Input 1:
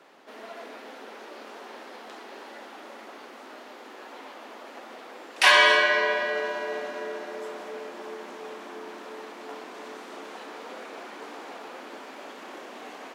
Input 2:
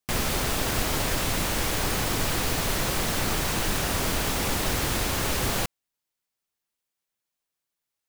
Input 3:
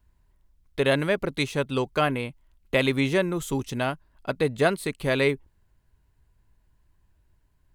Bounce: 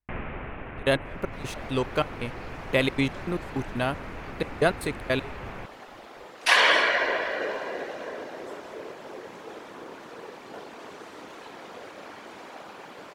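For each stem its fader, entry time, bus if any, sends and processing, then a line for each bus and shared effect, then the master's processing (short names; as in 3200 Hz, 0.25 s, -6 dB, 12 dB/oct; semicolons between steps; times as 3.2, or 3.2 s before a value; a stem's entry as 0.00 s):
-2.0 dB, 1.05 s, no send, whisperiser
-5.0 dB, 0.00 s, no send, steep low-pass 2600 Hz 48 dB/oct; auto duck -6 dB, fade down 0.70 s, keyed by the third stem
-0.5 dB, 0.00 s, no send, step gate ".x..x.xx.x." 156 bpm -24 dB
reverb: off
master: dry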